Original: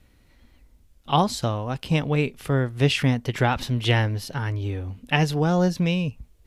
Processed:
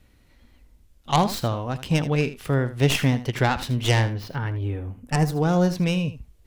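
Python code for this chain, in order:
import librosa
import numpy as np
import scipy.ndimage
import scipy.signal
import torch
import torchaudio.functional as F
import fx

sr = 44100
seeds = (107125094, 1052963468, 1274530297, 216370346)

y = fx.tracing_dist(x, sr, depth_ms=0.13)
y = fx.peak_eq(y, sr, hz=fx.line((4.13, 10000.0), (5.34, 2700.0)), db=-14.5, octaves=1.2, at=(4.13, 5.34), fade=0.02)
y = y + 10.0 ** (-14.0 / 20.0) * np.pad(y, (int(79 * sr / 1000.0), 0))[:len(y)]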